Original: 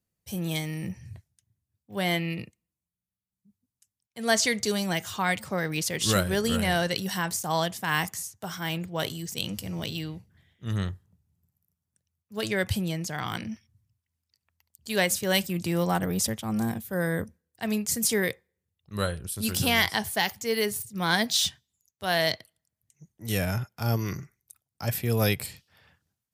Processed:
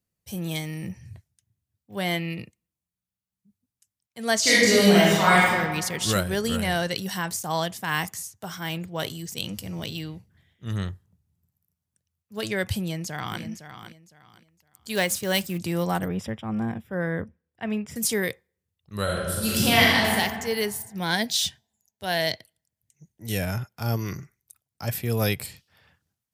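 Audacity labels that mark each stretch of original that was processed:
4.410000	5.490000	reverb throw, RT60 1.5 s, DRR -10.5 dB
12.800000	13.410000	echo throw 510 ms, feedback 25%, level -10.5 dB
14.950000	15.580000	block-companded coder 5-bit
16.080000	17.960000	Savitzky-Golay filter over 25 samples
19.030000	20.130000	reverb throw, RT60 1.7 s, DRR -5 dB
20.770000	23.430000	peaking EQ 1.2 kHz -13 dB 0.21 oct

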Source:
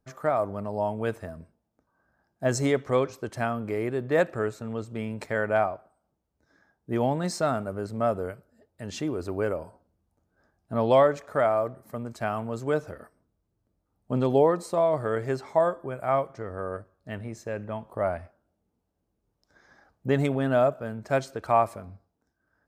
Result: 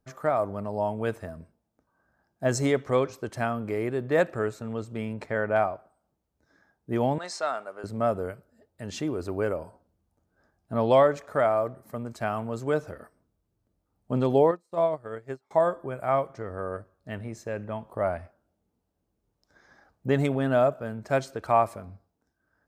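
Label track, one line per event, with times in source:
5.130000	5.560000	low-pass 2.6 kHz 6 dB/octave
7.180000	7.840000	band-pass 680–7000 Hz
14.510000	15.510000	upward expansion 2.5:1, over -42 dBFS

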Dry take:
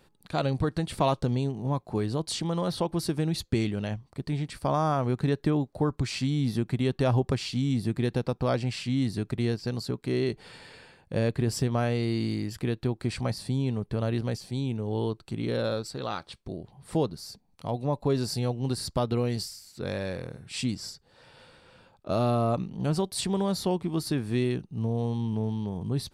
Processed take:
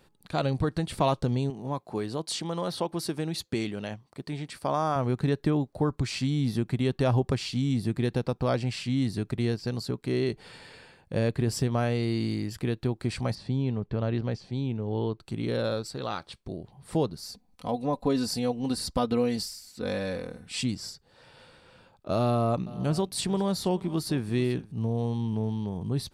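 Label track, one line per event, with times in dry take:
1.500000	4.960000	high-pass 260 Hz 6 dB/octave
13.350000	15.200000	distance through air 140 m
17.220000	20.630000	comb 4 ms
22.230000	24.720000	delay 434 ms -18.5 dB

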